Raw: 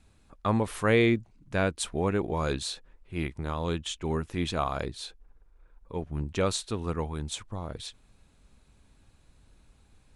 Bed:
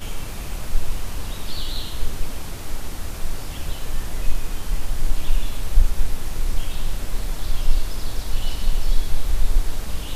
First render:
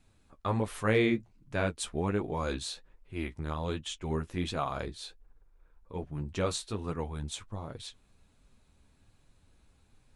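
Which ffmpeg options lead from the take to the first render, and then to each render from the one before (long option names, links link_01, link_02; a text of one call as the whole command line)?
ffmpeg -i in.wav -af "asoftclip=type=hard:threshold=-12dB,flanger=delay=6.7:depth=7.4:regen=-31:speed=1.3:shape=triangular" out.wav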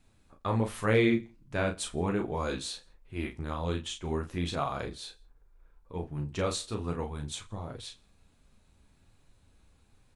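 ffmpeg -i in.wav -filter_complex "[0:a]asplit=2[link_01][link_02];[link_02]adelay=35,volume=-6.5dB[link_03];[link_01][link_03]amix=inputs=2:normalize=0,aecho=1:1:83|166:0.0668|0.0241" out.wav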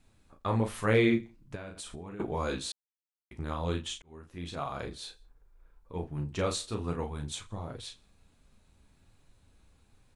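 ffmpeg -i in.wav -filter_complex "[0:a]asettb=1/sr,asplit=3[link_01][link_02][link_03];[link_01]atrim=end=1.554[link_04];[link_02]atrim=start=1.55:end=2.2,asetpts=PTS-STARTPTS,afade=type=in:duration=0.004:curve=qsin,afade=type=out:start_time=0.646:duration=0.004:curve=qsin,acompressor=threshold=-38dB:ratio=16:attack=3.2:release=140:knee=1:detection=peak[link_05];[link_03]atrim=start=2.196[link_06];[link_04][link_05]acrossfade=duration=0.004:curve1=hsin:curve2=qsin[link_07];[link_07][link_06]acrossfade=duration=0.004:curve1=qsin:curve2=hsin,asplit=4[link_08][link_09][link_10][link_11];[link_08]atrim=end=2.72,asetpts=PTS-STARTPTS,afade=type=out:start_time=2.716:duration=0.004:curve=hsin[link_12];[link_09]atrim=start=2.72:end=3.31,asetpts=PTS-STARTPTS,volume=0[link_13];[link_10]atrim=start=3.31:end=4.02,asetpts=PTS-STARTPTS,afade=type=in:duration=0.004:curve=hsin,afade=type=out:start_time=0.706:duration=0.004:curve=hsin[link_14];[link_11]atrim=start=4.02,asetpts=PTS-STARTPTS,afade=type=in:duration=1.01[link_15];[link_12][link_13][link_14][link_15]concat=n=4:v=0:a=1" out.wav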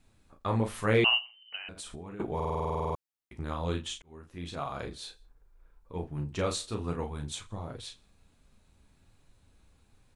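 ffmpeg -i in.wav -filter_complex "[0:a]asettb=1/sr,asplit=3[link_01][link_02][link_03];[link_01]atrim=end=1.044[link_04];[link_02]atrim=start=1.04:end=1.69,asetpts=PTS-STARTPTS,afade=type=in:duration=0.004:curve=qsin,afade=type=out:start_time=0.646:duration=0.004:curve=qsin,lowpass=frequency=2600:width_type=q:width=0.5098,lowpass=frequency=2600:width_type=q:width=0.6013,lowpass=frequency=2600:width_type=q:width=0.9,lowpass=frequency=2600:width_type=q:width=2.563,afreqshift=-3100[link_05];[link_03]atrim=start=1.686[link_06];[link_04][link_05]acrossfade=duration=0.004:curve1=hsin:curve2=qsin[link_07];[link_07][link_06]acrossfade=duration=0.004:curve1=qsin:curve2=hsin,asplit=13[link_08][link_09][link_10][link_11][link_12][link_13][link_14][link_15][link_16][link_17][link_18][link_19][link_20];[link_08]atrim=end=2.402[link_21];[link_09]atrim=start=2.348:end=2.402[link_22];[link_10]atrim=start=2.348:end=2.402[link_23];[link_11]atrim=start=2.348:end=2.402[link_24];[link_12]atrim=start=2.348:end=2.402[link_25];[link_13]atrim=start=2.348:end=2.402[link_26];[link_14]atrim=start=2.348:end=2.402[link_27];[link_15]atrim=start=2.348:end=2.402[link_28];[link_16]atrim=start=2.348:end=2.402[link_29];[link_17]atrim=start=2.348:end=2.402[link_30];[link_18]atrim=start=2.348:end=2.402[link_31];[link_19]atrim=start=2.348:end=2.402[link_32];[link_20]atrim=start=2.948[link_33];[link_21][link_22]acrossfade=duration=0.004:curve1=hsin:curve2=hsin[link_34];[link_34][link_23]acrossfade=duration=0.004:curve1=hsin:curve2=hsin[link_35];[link_35][link_24]acrossfade=duration=0.004:curve1=hsin:curve2=hsin[link_36];[link_36][link_25]acrossfade=duration=0.004:curve1=hsin:curve2=hsin[link_37];[link_37][link_26]acrossfade=duration=0.004:curve1=hsin:curve2=hsin[link_38];[link_38][link_27]acrossfade=duration=0.004:curve1=hsin:curve2=hsin[link_39];[link_39][link_28]acrossfade=duration=0.004:curve1=hsin:curve2=hsin[link_40];[link_40][link_29]acrossfade=duration=0.004:curve1=hsin:curve2=hsin[link_41];[link_41][link_30]acrossfade=duration=0.004:curve1=hsin:curve2=hsin[link_42];[link_42][link_31]acrossfade=duration=0.004:curve1=hsin:curve2=hsin[link_43];[link_43][link_32]acrossfade=duration=0.004:curve1=hsin:curve2=hsin[link_44];[link_44][link_33]acrossfade=duration=0.004:curve1=hsin:curve2=hsin" out.wav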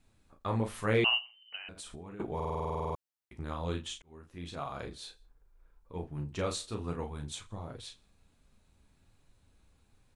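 ffmpeg -i in.wav -af "volume=-3dB" out.wav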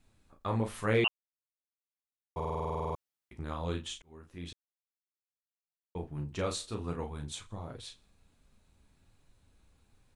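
ffmpeg -i in.wav -filter_complex "[0:a]asplit=5[link_01][link_02][link_03][link_04][link_05];[link_01]atrim=end=1.08,asetpts=PTS-STARTPTS,afade=type=out:start_time=1.076:duration=0.004:curve=hsin[link_06];[link_02]atrim=start=1.08:end=2.36,asetpts=PTS-STARTPTS,volume=0[link_07];[link_03]atrim=start=2.36:end=4.53,asetpts=PTS-STARTPTS,afade=type=in:duration=0.004:curve=hsin,afade=type=out:start_time=2.166:duration=0.004:curve=hsin[link_08];[link_04]atrim=start=4.53:end=5.95,asetpts=PTS-STARTPTS,volume=0[link_09];[link_05]atrim=start=5.95,asetpts=PTS-STARTPTS,afade=type=in:duration=0.004:curve=hsin[link_10];[link_06][link_07][link_08][link_09][link_10]concat=n=5:v=0:a=1" out.wav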